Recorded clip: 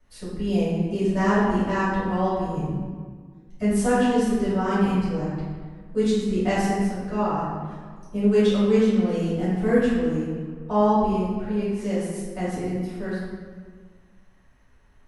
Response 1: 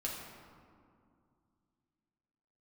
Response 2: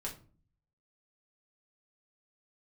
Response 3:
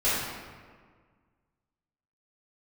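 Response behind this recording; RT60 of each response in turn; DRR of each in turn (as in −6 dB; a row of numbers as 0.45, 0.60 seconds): 3; 2.3, 0.40, 1.7 seconds; −4.5, −3.0, −14.5 decibels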